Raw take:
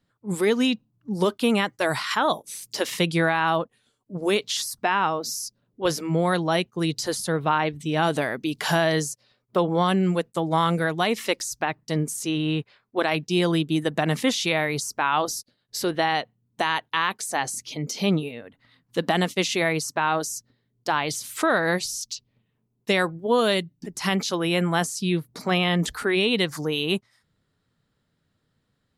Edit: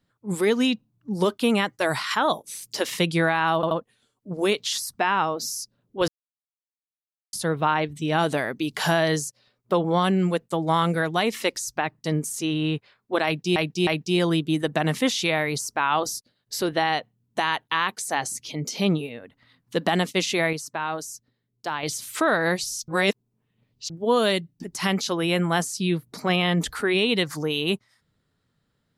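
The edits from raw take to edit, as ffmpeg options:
-filter_complex "[0:a]asplit=11[s0][s1][s2][s3][s4][s5][s6][s7][s8][s9][s10];[s0]atrim=end=3.632[s11];[s1]atrim=start=3.548:end=3.632[s12];[s2]atrim=start=3.548:end=5.92,asetpts=PTS-STARTPTS,afade=t=out:st=2.368:d=0.004:c=hsin[s13];[s3]atrim=start=5.92:end=7.17,asetpts=PTS-STARTPTS,volume=0[s14];[s4]atrim=start=7.17:end=13.402,asetpts=PTS-STARTPTS,afade=t=in:d=0.004:c=hsin[s15];[s5]atrim=start=13.088:end=13.402[s16];[s6]atrim=start=13.088:end=19.752[s17];[s7]atrim=start=19.748:end=21.052,asetpts=PTS-STARTPTS,volume=0.531[s18];[s8]atrim=start=21.048:end=22.102[s19];[s9]atrim=start=22.098:end=23.122,asetpts=PTS-STARTPTS,areverse[s20];[s10]atrim=start=23.118[s21];[s11][s12]acrossfade=d=0.004:c1=hsin:c2=hsin[s22];[s13][s14][s15]concat=n=3:v=0:a=1[s23];[s22][s23]acrossfade=d=0.004:c1=hsin:c2=hsin[s24];[s24][s16]acrossfade=d=0.004:c1=hsin:c2=hsin[s25];[s25][s17]acrossfade=d=0.004:c1=hsin:c2=hsin[s26];[s26][s18]acrossfade=d=0.004:c1=hsin:c2=hsin[s27];[s27][s19]acrossfade=d=0.004:c1=hsin:c2=hsin[s28];[s28][s20]acrossfade=d=0.004:c1=hsin:c2=hsin[s29];[s29][s21]acrossfade=d=0.004:c1=hsin:c2=hsin"

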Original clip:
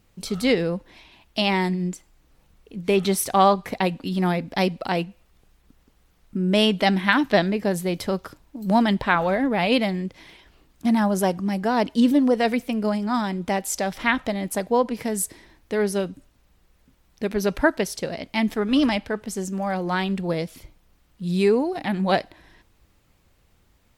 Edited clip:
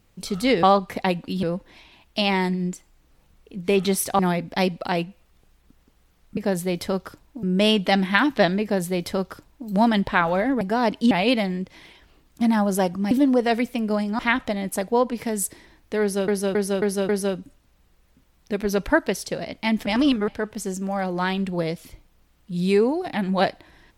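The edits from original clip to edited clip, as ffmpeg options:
-filter_complex "[0:a]asplit=16[s0][s1][s2][s3][s4][s5][s6][s7][s8][s9][s10][s11][s12][s13][s14][s15];[s0]atrim=end=0.632[s16];[s1]atrim=start=3.388:end=4.192[s17];[s2]atrim=start=0.628:end=3.392[s18];[s3]atrim=start=4.188:end=6.372[s19];[s4]atrim=start=7.558:end=8.622[s20];[s5]atrim=start=6.368:end=9.552[s21];[s6]atrim=start=11.548:end=12.052[s22];[s7]atrim=start=9.548:end=11.552[s23];[s8]atrim=start=12.048:end=13.132[s24];[s9]atrim=start=13.978:end=16.072[s25];[s10]atrim=start=15.798:end=16.072[s26];[s11]atrim=start=15.798:end=16.072[s27];[s12]atrim=start=15.798:end=16.072[s28];[s13]atrim=start=15.798:end=18.572[s29];[s14]atrim=start=18.568:end=18.992,asetpts=PTS-STARTPTS,areverse[s30];[s15]atrim=start=18.988[s31];[s16][s17]acrossfade=d=0.004:c1=hsin:c2=hsin[s32];[s32][s18]acrossfade=d=0.004:c1=hsin:c2=hsin[s33];[s33][s19]acrossfade=d=0.004:c1=hsin:c2=hsin[s34];[s34][s20]acrossfade=d=0.004:c1=hsin:c2=hsin[s35];[s35][s21]acrossfade=d=0.004:c1=hsin:c2=hsin[s36];[s36][s22]acrossfade=d=0.004:c1=hsin:c2=hsin[s37];[s37][s23]acrossfade=d=0.004:c1=hsin:c2=hsin[s38];[s38][s24]acrossfade=d=0.004:c1=hsin:c2=hsin[s39];[s39][s25]acrossfade=d=0.004:c1=hsin:c2=hsin[s40];[s40][s26]acrossfade=d=0.004:c1=hsin:c2=hsin[s41];[s41][s27]acrossfade=d=0.004:c1=hsin:c2=hsin[s42];[s42][s28]acrossfade=d=0.004:c1=hsin:c2=hsin[s43];[s43][s29]acrossfade=d=0.004:c1=hsin:c2=hsin[s44];[s44][s30]acrossfade=d=0.004:c1=hsin:c2=hsin[s45];[s45][s31]acrossfade=d=0.004:c1=hsin:c2=hsin"

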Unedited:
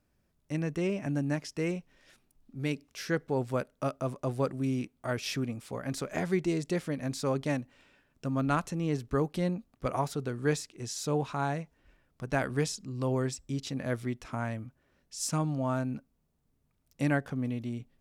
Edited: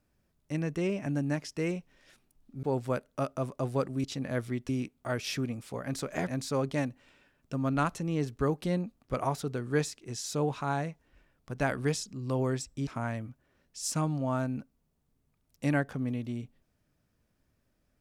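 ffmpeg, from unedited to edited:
-filter_complex "[0:a]asplit=6[s0][s1][s2][s3][s4][s5];[s0]atrim=end=2.632[s6];[s1]atrim=start=3.268:end=4.682[s7];[s2]atrim=start=13.588:end=14.242[s8];[s3]atrim=start=4.678:end=6.262[s9];[s4]atrim=start=6.988:end=13.592[s10];[s5]atrim=start=14.238[s11];[s6][s7]acrossfade=d=0.004:c1=hsin:c2=hsin[s12];[s12][s8]acrossfade=d=0.004:c1=hsin:c2=hsin[s13];[s13][s9]acrossfade=d=0.004:c1=hsin:c2=hsin[s14];[s14][s10]acrossfade=d=0.004:c1=hsin:c2=hsin[s15];[s15][s11]acrossfade=d=0.004:c1=hsin:c2=hsin"

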